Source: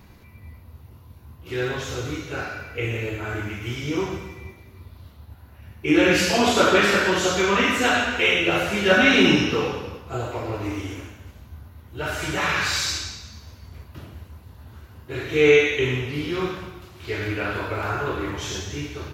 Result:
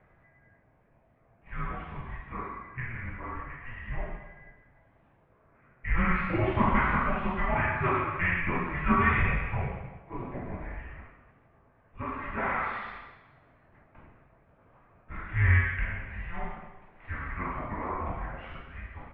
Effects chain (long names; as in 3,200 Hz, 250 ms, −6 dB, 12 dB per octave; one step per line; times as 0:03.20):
low-shelf EQ 190 Hz −7 dB
single-sideband voice off tune −350 Hz 200–2,500 Hz
level −5.5 dB